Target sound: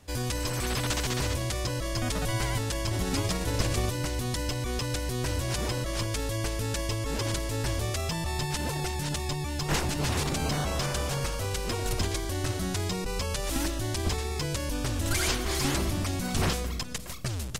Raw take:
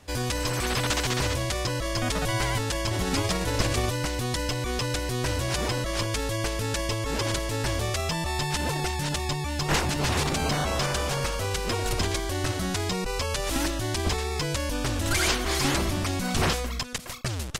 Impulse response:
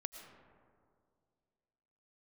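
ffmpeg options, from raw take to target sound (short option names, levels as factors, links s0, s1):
-filter_complex "[0:a]asplit=2[s0][s1];[s1]equalizer=f=1400:w=0.45:g=-14.5[s2];[1:a]atrim=start_sample=2205,highshelf=f=12000:g=4[s3];[s2][s3]afir=irnorm=-1:irlink=0,volume=1.33[s4];[s0][s4]amix=inputs=2:normalize=0,volume=0.473"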